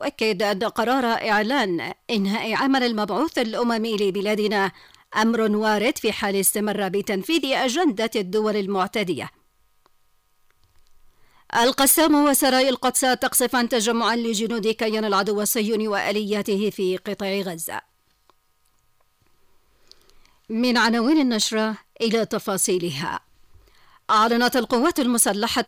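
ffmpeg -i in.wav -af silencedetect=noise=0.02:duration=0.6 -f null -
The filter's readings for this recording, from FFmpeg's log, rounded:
silence_start: 9.28
silence_end: 11.50 | silence_duration: 2.22
silence_start: 17.79
silence_end: 19.92 | silence_duration: 2.12
silence_start: 23.18
silence_end: 24.09 | silence_duration: 0.91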